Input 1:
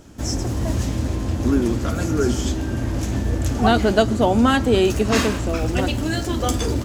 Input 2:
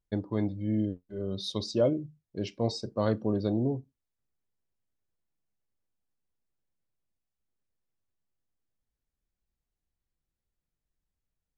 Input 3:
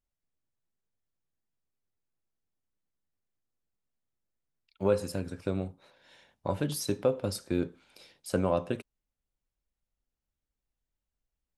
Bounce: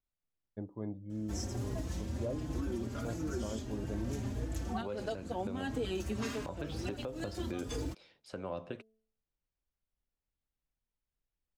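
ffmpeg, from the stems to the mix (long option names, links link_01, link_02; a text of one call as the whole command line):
ffmpeg -i stem1.wav -i stem2.wav -i stem3.wav -filter_complex "[0:a]asplit=2[link_01][link_02];[link_02]adelay=4.3,afreqshift=1.5[link_03];[link_01][link_03]amix=inputs=2:normalize=1,adelay=1100,volume=-11dB[link_04];[1:a]lowpass=1300,adelay=450,volume=-10.5dB[link_05];[2:a]lowpass=4300,bandreject=frequency=220.1:width_type=h:width=4,bandreject=frequency=440.2:width_type=h:width=4,bandreject=frequency=660.3:width_type=h:width=4,acrossover=split=380|3300[link_06][link_07][link_08];[link_06]acompressor=threshold=-37dB:ratio=4[link_09];[link_07]acompressor=threshold=-32dB:ratio=4[link_10];[link_08]acompressor=threshold=-50dB:ratio=4[link_11];[link_09][link_10][link_11]amix=inputs=3:normalize=0,volume=-4dB,asplit=2[link_12][link_13];[link_13]apad=whole_len=350527[link_14];[link_04][link_14]sidechaincompress=threshold=-48dB:ratio=8:attack=26:release=102[link_15];[link_15][link_05][link_12]amix=inputs=3:normalize=0,alimiter=level_in=3dB:limit=-24dB:level=0:latency=1:release=251,volume=-3dB" out.wav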